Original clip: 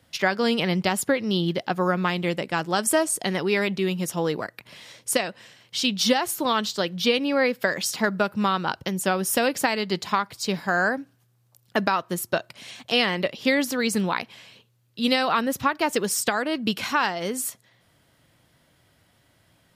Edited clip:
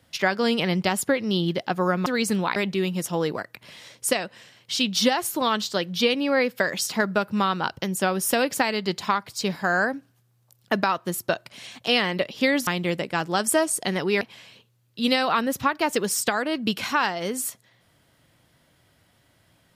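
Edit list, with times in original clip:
2.06–3.6 swap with 13.71–14.21

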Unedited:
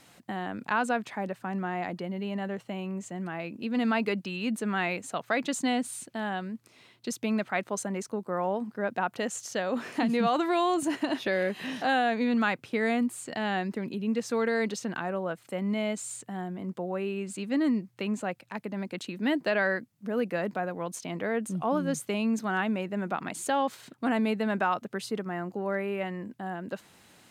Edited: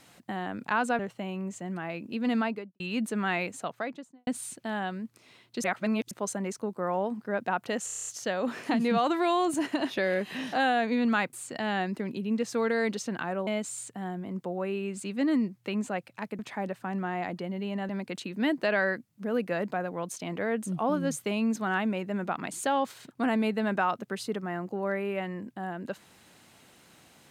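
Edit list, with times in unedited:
0.99–2.49 move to 18.72
3.81–4.3 studio fade out
4.97–5.77 studio fade out
7.14–7.61 reverse
9.36 stutter 0.03 s, 8 plays
12.62–13.1 cut
15.24–15.8 cut

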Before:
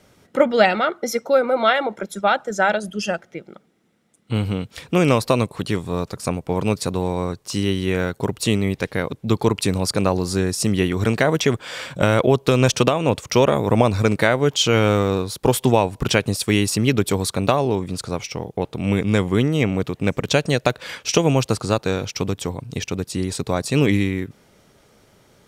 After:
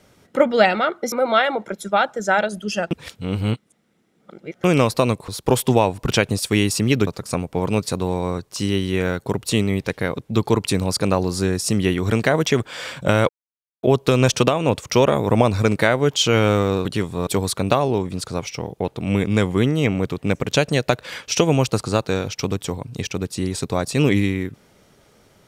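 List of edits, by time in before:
1.12–1.43 cut
3.22–4.95 reverse
5.59–6.01 swap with 15.25–17.04
12.23 insert silence 0.54 s

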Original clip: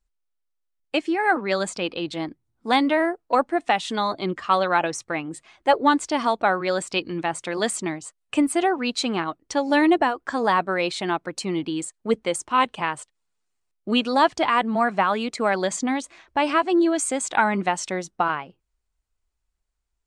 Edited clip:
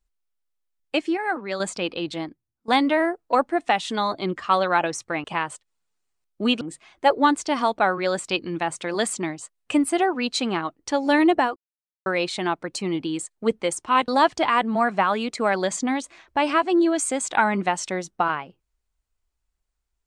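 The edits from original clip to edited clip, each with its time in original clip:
1.17–1.6 gain -5.5 dB
2.16–2.68 fade out quadratic, to -16.5 dB
10.19–10.69 mute
12.71–14.08 move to 5.24

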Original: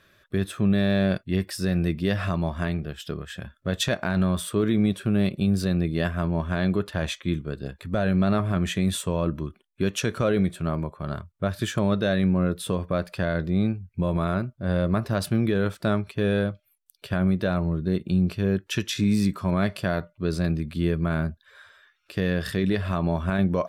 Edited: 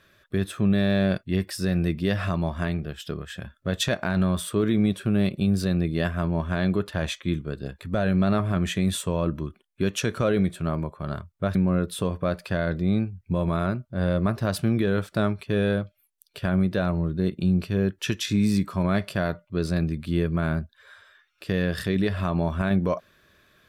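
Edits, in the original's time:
11.55–12.23 cut

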